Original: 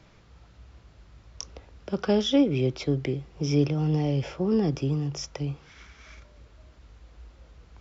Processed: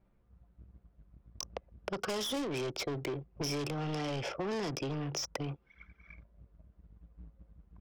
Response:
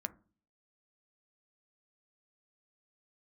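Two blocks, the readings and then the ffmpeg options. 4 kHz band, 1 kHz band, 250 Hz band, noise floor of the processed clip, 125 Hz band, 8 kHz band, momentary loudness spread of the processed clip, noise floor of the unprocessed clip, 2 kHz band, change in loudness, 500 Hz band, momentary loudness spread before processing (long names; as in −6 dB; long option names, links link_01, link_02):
−4.0 dB, −1.5 dB, −13.0 dB, −70 dBFS, −13.0 dB, can't be measured, 21 LU, −55 dBFS, −1.0 dB, −10.5 dB, −9.0 dB, 19 LU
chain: -filter_complex "[0:a]anlmdn=1,asplit=2[link_01][link_02];[link_02]highpass=frequency=720:poles=1,volume=28dB,asoftclip=type=tanh:threshold=-11.5dB[link_03];[link_01][link_03]amix=inputs=2:normalize=0,lowpass=frequency=3800:poles=1,volume=-6dB,acrossover=split=1700|5100[link_04][link_05][link_06];[link_04]acompressor=threshold=-32dB:ratio=4[link_07];[link_05]acompressor=threshold=-43dB:ratio=4[link_08];[link_06]acompressor=threshold=-34dB:ratio=4[link_09];[link_07][link_08][link_09]amix=inputs=3:normalize=0,volume=-4.5dB"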